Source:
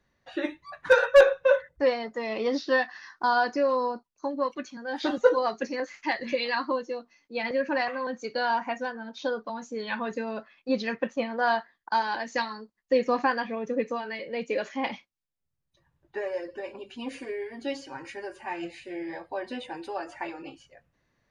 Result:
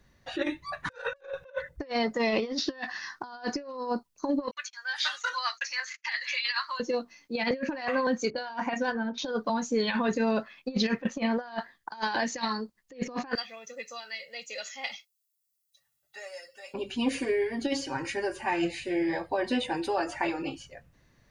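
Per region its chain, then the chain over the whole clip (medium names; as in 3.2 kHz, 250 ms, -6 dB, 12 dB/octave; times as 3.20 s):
4.51–6.80 s: gate -46 dBFS, range -32 dB + high-pass 1.3 kHz 24 dB/octave
8.30–9.18 s: hum notches 60/120/180/240/300/360/420/480 Hz + level-controlled noise filter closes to 720 Hz, open at -25.5 dBFS
13.35–16.74 s: differentiator + comb 1.5 ms, depth 79%
whole clip: treble shelf 3.3 kHz +7 dB; compressor with a negative ratio -31 dBFS, ratio -0.5; bass shelf 240 Hz +8.5 dB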